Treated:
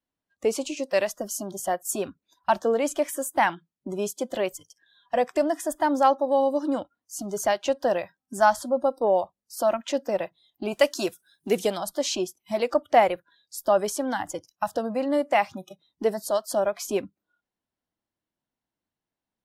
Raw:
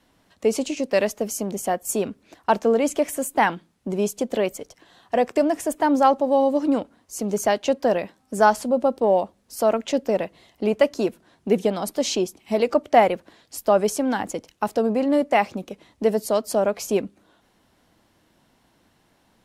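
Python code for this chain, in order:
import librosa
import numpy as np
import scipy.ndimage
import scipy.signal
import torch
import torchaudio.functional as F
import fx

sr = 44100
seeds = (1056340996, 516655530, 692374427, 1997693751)

y = fx.high_shelf(x, sr, hz=3000.0, db=12.0, at=(10.71, 11.76), fade=0.02)
y = fx.noise_reduce_blind(y, sr, reduce_db=26)
y = fx.dynamic_eq(y, sr, hz=210.0, q=1.2, threshold_db=-36.0, ratio=4.0, max_db=-6)
y = y * 10.0 ** (-2.0 / 20.0)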